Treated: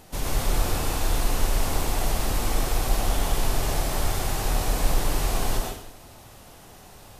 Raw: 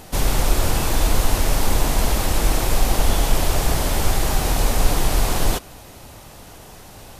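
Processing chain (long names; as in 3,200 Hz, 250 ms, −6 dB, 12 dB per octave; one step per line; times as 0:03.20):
dense smooth reverb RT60 0.73 s, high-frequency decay 0.95×, pre-delay 80 ms, DRR −1 dB
level −9 dB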